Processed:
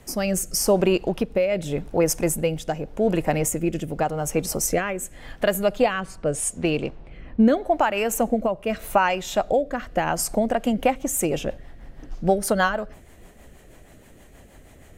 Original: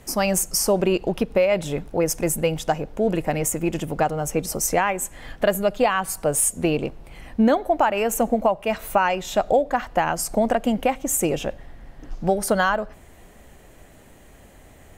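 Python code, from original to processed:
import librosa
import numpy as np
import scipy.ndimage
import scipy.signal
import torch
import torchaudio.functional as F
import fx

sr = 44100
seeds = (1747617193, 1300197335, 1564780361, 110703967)

y = fx.rotary_switch(x, sr, hz=0.85, then_hz=6.3, switch_at_s=10.12)
y = fx.env_lowpass(y, sr, base_hz=2200.0, full_db=-17.5, at=(6.0, 7.82), fade=0.02)
y = F.gain(torch.from_numpy(y), 1.5).numpy()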